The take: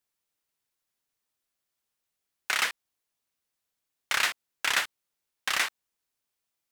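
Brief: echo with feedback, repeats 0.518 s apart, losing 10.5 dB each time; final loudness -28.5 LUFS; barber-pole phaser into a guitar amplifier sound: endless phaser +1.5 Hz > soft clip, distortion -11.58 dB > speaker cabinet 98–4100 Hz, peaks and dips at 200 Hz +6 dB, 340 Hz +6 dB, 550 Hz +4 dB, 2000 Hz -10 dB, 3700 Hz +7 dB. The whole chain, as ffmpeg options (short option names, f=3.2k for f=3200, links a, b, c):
-filter_complex "[0:a]aecho=1:1:518|1036|1554:0.299|0.0896|0.0269,asplit=2[a][b];[b]afreqshift=1.5[c];[a][c]amix=inputs=2:normalize=1,asoftclip=threshold=-24.5dB,highpass=98,equalizer=f=200:t=q:w=4:g=6,equalizer=f=340:t=q:w=4:g=6,equalizer=f=550:t=q:w=4:g=4,equalizer=f=2k:t=q:w=4:g=-10,equalizer=f=3.7k:t=q:w=4:g=7,lowpass=f=4.1k:w=0.5412,lowpass=f=4.1k:w=1.3066,volume=8dB"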